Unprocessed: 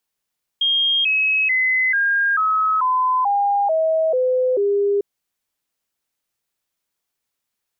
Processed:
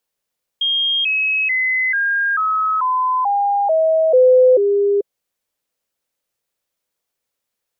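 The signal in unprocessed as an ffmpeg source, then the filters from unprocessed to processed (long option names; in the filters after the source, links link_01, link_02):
-f lavfi -i "aevalsrc='0.178*clip(min(mod(t,0.44),0.44-mod(t,0.44))/0.005,0,1)*sin(2*PI*3230*pow(2,-floor(t/0.44)/3)*mod(t,0.44))':duration=4.4:sample_rate=44100"
-af "equalizer=frequency=520:width_type=o:width=0.5:gain=8"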